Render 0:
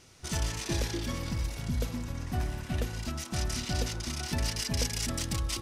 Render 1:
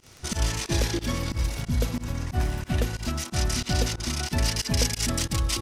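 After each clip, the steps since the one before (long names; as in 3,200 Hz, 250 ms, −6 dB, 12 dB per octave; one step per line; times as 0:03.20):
surface crackle 18 per second −39 dBFS
fake sidechain pumping 91 BPM, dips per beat 2, −24 dB, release 92 ms
level +6.5 dB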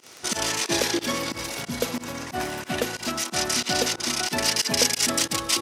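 high-pass filter 310 Hz 12 dB per octave
level +6 dB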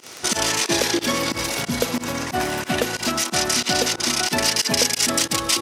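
downward compressor 2 to 1, threshold −27 dBFS, peak gain reduction 7 dB
level +7.5 dB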